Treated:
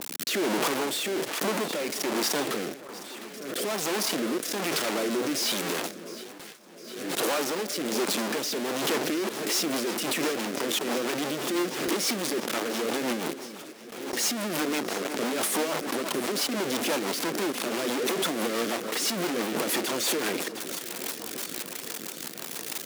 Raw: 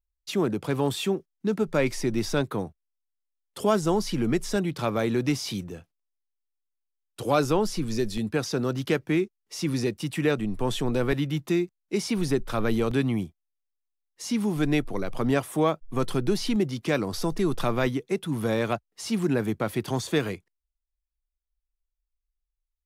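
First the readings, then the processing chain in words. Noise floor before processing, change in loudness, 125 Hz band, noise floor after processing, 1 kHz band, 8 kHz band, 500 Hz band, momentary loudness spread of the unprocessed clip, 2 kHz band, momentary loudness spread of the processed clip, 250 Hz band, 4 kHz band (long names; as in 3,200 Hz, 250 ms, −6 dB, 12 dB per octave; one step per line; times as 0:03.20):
−83 dBFS, −1.0 dB, −15.0 dB, −42 dBFS, +0.5 dB, +9.5 dB, −2.5 dB, 6 LU, +3.0 dB, 9 LU, −4.5 dB, +6.5 dB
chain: sign of each sample alone
delay that swaps between a low-pass and a high-pass 354 ms, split 1,600 Hz, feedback 85%, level −13.5 dB
in parallel at −1 dB: brickwall limiter −30.5 dBFS, peak gain reduction 11.5 dB
on the sum: high-pass filter 250 Hz 24 dB per octave
rotating-speaker cabinet horn 1.2 Hz, later 6 Hz, at 0:08.84
noise gate with hold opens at −31 dBFS
background raised ahead of every attack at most 48 dB per second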